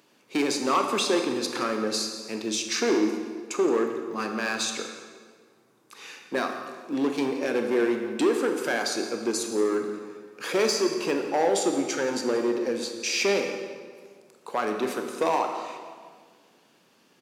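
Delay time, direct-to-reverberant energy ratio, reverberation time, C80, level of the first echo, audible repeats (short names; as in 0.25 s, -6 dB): 0.173 s, 4.0 dB, 1.7 s, 6.5 dB, -16.5 dB, 1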